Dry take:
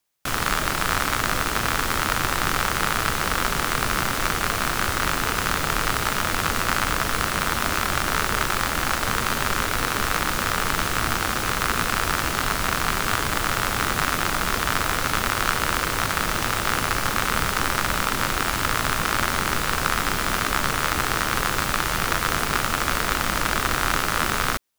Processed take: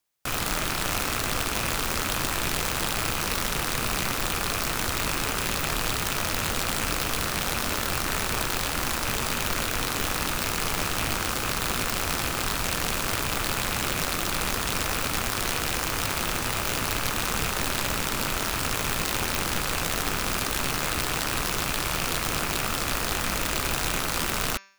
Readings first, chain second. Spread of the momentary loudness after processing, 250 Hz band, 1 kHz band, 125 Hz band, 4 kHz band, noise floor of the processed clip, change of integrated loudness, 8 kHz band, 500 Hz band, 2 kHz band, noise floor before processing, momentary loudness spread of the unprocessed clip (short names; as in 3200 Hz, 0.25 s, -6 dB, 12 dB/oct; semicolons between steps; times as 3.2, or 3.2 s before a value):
0 LU, -3.0 dB, -7.0 dB, -3.0 dB, -2.0 dB, -29 dBFS, -3.5 dB, -1.0 dB, -3.0 dB, -6.0 dB, -26 dBFS, 1 LU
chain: rattling part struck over -30 dBFS, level -18 dBFS; de-hum 195.5 Hz, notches 36; wrapped overs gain 13 dB; gain -3 dB